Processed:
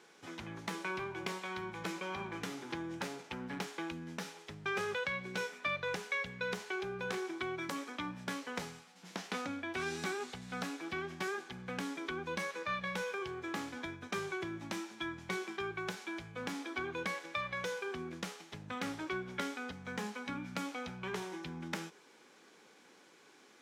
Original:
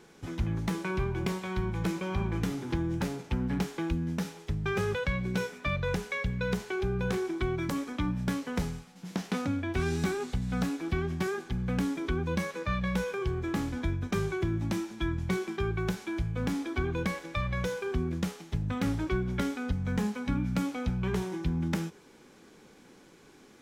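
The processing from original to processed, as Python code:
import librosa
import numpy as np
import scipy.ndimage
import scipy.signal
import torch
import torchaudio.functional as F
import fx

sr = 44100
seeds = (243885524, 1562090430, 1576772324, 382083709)

y = fx.weighting(x, sr, curve='A')
y = F.gain(torch.from_numpy(y), -2.5).numpy()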